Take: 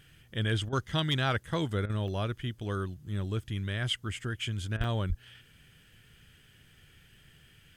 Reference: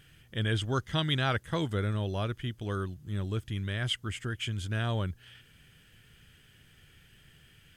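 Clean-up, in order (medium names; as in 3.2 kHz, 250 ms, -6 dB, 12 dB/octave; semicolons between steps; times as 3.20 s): clip repair -19 dBFS; 4.77–4.89 s: high-pass 140 Hz 24 dB/octave; 5.08–5.20 s: high-pass 140 Hz 24 dB/octave; interpolate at 2.08/2.58/4.84 s, 1.9 ms; interpolate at 0.69/1.86/4.77 s, 35 ms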